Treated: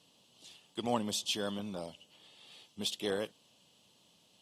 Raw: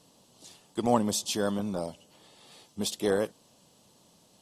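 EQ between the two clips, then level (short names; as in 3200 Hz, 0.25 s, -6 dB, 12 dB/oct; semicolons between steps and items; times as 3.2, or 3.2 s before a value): HPF 57 Hz; bell 3000 Hz +12 dB 0.94 oct; -8.5 dB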